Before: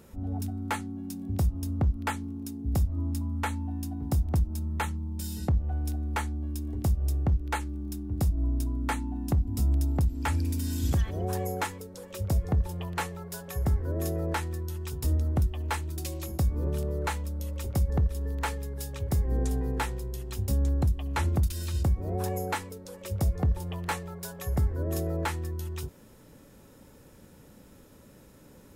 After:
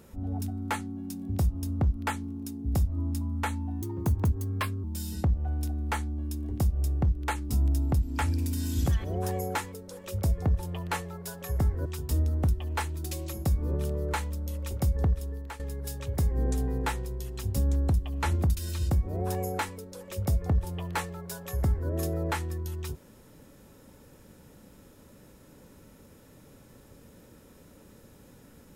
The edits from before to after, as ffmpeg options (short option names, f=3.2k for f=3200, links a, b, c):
-filter_complex "[0:a]asplit=6[a][b][c][d][e][f];[a]atrim=end=3.824[g];[b]atrim=start=3.82:end=5.08,asetpts=PTS-STARTPTS,asetrate=54684,aresample=44100,atrim=end_sample=44811,asetpts=PTS-STARTPTS[h];[c]atrim=start=5.076:end=7.742[i];[d]atrim=start=9.558:end=13.922[j];[e]atrim=start=14.788:end=18.53,asetpts=PTS-STARTPTS,afade=t=out:st=3.252:d=0.49:silence=0.16788[k];[f]atrim=start=18.53,asetpts=PTS-STARTPTS,afade=t=in:d=0.004:c=hsin:silence=0.16788[l];[g][h]acrossfade=d=0.004:c1=hsin:c2=hsin[m];[m][i]acrossfade=d=0.004:c1=hsin:c2=hsin[n];[n][j]acrossfade=d=0.004:c1=hsin:c2=hsin[o];[k][l]concat=n=2:v=0:a=1[p];[o][p]acrossfade=d=0.004:c1=hsin:c2=hsin"